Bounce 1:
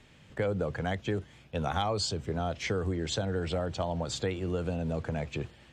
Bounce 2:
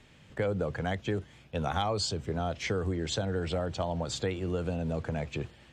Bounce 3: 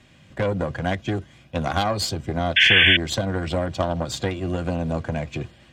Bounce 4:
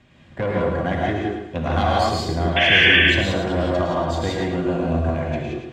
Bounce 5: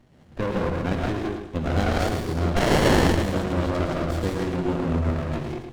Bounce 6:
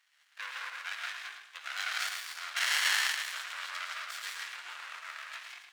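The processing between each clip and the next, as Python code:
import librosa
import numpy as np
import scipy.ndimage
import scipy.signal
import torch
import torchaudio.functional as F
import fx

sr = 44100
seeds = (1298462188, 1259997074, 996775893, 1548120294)

y1 = x
y2 = fx.cheby_harmonics(y1, sr, harmonics=(2, 5, 7), levels_db=(-6, -22, -22), full_scale_db=-16.0)
y2 = fx.notch_comb(y2, sr, f0_hz=440.0)
y2 = fx.spec_paint(y2, sr, seeds[0], shape='noise', start_s=2.56, length_s=0.41, low_hz=1500.0, high_hz=3500.0, level_db=-22.0)
y2 = y2 * librosa.db_to_amplitude(7.0)
y3 = fx.lowpass(y2, sr, hz=2500.0, slope=6)
y3 = fx.echo_feedback(y3, sr, ms=109, feedback_pct=36, wet_db=-6.5)
y3 = fx.rev_gated(y3, sr, seeds[1], gate_ms=200, shape='rising', drr_db=-3.0)
y3 = y3 * librosa.db_to_amplitude(-1.0)
y4 = fx.high_shelf(y3, sr, hz=4000.0, db=8.5)
y4 = fx.hum_notches(y4, sr, base_hz=50, count=2)
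y4 = fx.running_max(y4, sr, window=33)
y4 = y4 * librosa.db_to_amplitude(-2.0)
y5 = scipy.signal.sosfilt(scipy.signal.butter(4, 1500.0, 'highpass', fs=sr, output='sos'), y4)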